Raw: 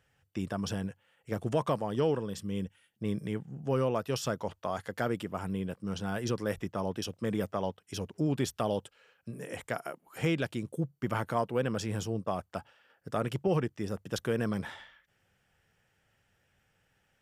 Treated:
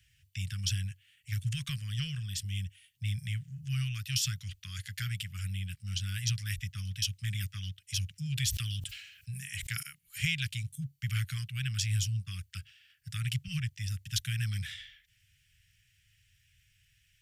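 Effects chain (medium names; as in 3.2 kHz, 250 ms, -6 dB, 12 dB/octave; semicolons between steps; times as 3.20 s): inverse Chebyshev band-stop 290–890 Hz, stop band 60 dB; 1.64–2.45 s: peaking EQ 530 Hz +13.5 dB 1.1 oct; 8.21–9.83 s: decay stretcher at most 59 dB/s; trim +8 dB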